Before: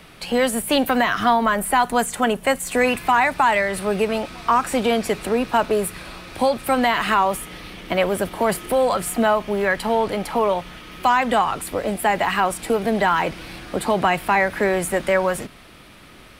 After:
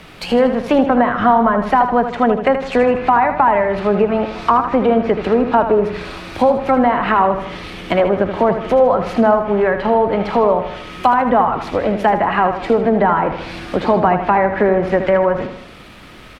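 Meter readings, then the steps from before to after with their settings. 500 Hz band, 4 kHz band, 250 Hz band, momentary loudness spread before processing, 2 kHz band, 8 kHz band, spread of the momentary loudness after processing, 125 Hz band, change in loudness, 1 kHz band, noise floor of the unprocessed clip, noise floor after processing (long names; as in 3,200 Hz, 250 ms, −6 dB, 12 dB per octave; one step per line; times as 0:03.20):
+6.5 dB, −4.0 dB, +6.5 dB, 7 LU, −0.5 dB, below −15 dB, 6 LU, +6.5 dB, +5.0 dB, +5.0 dB, −45 dBFS, −39 dBFS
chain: running median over 5 samples
treble cut that deepens with the level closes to 1,100 Hz, closed at −16 dBFS
repeating echo 78 ms, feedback 49%, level −9 dB
level +6 dB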